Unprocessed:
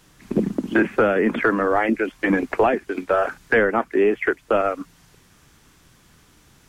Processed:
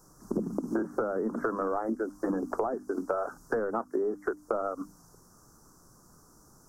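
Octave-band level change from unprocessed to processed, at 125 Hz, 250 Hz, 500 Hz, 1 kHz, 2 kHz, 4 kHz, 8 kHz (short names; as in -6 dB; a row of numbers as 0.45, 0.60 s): -11.5 dB, -10.0 dB, -10.5 dB, -11.0 dB, -19.0 dB, under -20 dB, n/a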